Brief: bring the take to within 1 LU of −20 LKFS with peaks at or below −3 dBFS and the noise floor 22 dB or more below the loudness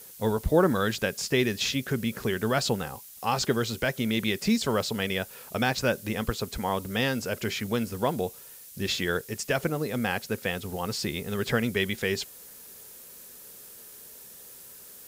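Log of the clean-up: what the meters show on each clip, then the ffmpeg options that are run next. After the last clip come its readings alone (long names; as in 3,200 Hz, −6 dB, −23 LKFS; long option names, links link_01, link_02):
background noise floor −48 dBFS; target noise floor −50 dBFS; integrated loudness −28.0 LKFS; sample peak −9.5 dBFS; target loudness −20.0 LKFS
→ -af "afftdn=noise_reduction=6:noise_floor=-48"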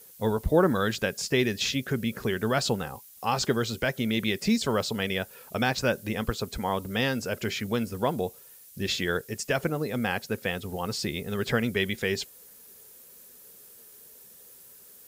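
background noise floor −51 dBFS; integrated loudness −28.5 LKFS; sample peak −9.5 dBFS; target loudness −20.0 LKFS
→ -af "volume=8.5dB,alimiter=limit=-3dB:level=0:latency=1"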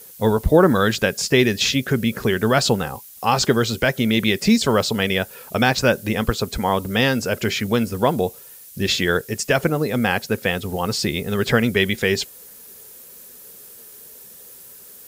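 integrated loudness −20.0 LKFS; sample peak −3.0 dBFS; background noise floor −43 dBFS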